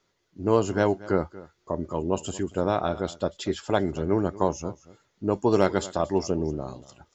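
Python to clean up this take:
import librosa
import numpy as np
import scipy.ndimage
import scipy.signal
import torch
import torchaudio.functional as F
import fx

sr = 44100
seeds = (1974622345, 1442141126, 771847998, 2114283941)

y = fx.fix_declip(x, sr, threshold_db=-7.0)
y = fx.fix_echo_inverse(y, sr, delay_ms=233, level_db=-19.0)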